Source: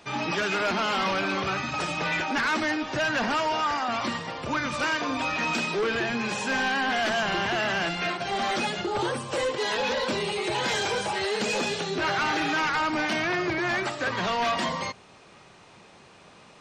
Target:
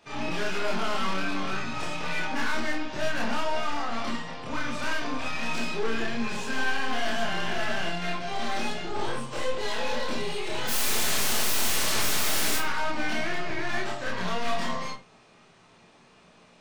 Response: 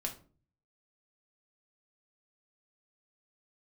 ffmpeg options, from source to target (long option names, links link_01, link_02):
-filter_complex "[0:a]asplit=3[link_01][link_02][link_03];[link_01]afade=type=out:start_time=10.67:duration=0.02[link_04];[link_02]aeval=exprs='0.106*sin(PI/2*7.08*val(0)/0.106)':channel_layout=same,afade=type=in:start_time=10.67:duration=0.02,afade=type=out:start_time=12.56:duration=0.02[link_05];[link_03]afade=type=in:start_time=12.56:duration=0.02[link_06];[link_04][link_05][link_06]amix=inputs=3:normalize=0,aeval=exprs='0.112*(cos(1*acos(clip(val(0)/0.112,-1,1)))-cos(1*PI/2))+0.0178*(cos(4*acos(clip(val(0)/0.112,-1,1)))-cos(4*PI/2))':channel_layout=same,asplit=2[link_07][link_08];[1:a]atrim=start_sample=2205,afade=type=out:start_time=0.15:duration=0.01,atrim=end_sample=7056,adelay=27[link_09];[link_08][link_09]afir=irnorm=-1:irlink=0,volume=2dB[link_10];[link_07][link_10]amix=inputs=2:normalize=0,volume=-9dB"